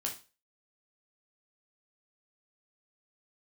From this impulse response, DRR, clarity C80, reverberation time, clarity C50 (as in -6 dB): -0.5 dB, 16.5 dB, 0.30 s, 9.5 dB